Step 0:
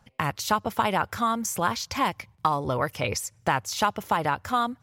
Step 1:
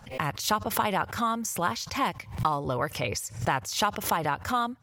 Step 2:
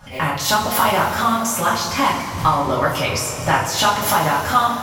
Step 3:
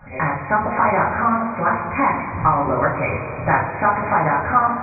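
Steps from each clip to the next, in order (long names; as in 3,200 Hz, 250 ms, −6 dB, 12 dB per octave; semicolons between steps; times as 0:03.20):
background raised ahead of every attack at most 130 dB per second; level −2.5 dB
coupled-rooms reverb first 0.36 s, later 4.3 s, from −17 dB, DRR −7.5 dB; level +2.5 dB
linear-phase brick-wall low-pass 2,500 Hz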